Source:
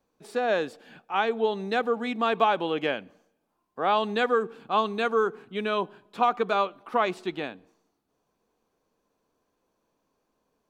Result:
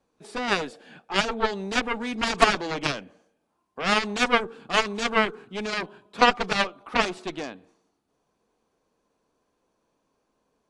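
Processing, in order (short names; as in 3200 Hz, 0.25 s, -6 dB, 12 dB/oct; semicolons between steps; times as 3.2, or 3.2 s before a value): added harmonics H 4 -12 dB, 6 -28 dB, 7 -12 dB, 8 -38 dB, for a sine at -8.5 dBFS; gain +4.5 dB; AAC 64 kbps 24000 Hz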